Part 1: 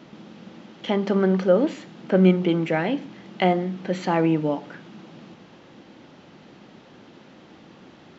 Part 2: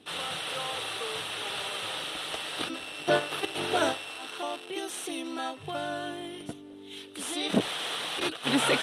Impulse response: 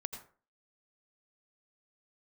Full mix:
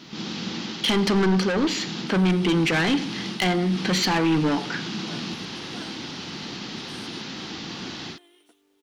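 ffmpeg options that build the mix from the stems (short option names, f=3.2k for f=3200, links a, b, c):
-filter_complex "[0:a]equalizer=f=4.8k:w=0.91:g=14,dynaudnorm=f=100:g=3:m=12dB,asoftclip=type=tanh:threshold=-16dB,volume=-2dB,asplit=2[a][b];[b]volume=-8.5dB[c];[1:a]highpass=f=340:w=0.5412,highpass=f=340:w=1.3066,adelay=2000,volume=-14.5dB[d];[2:a]atrim=start_sample=2205[e];[c][e]afir=irnorm=-1:irlink=0[f];[a][d][f]amix=inputs=3:normalize=0,equalizer=f=580:t=o:w=0.53:g=-10,acrusher=bits=11:mix=0:aa=0.000001"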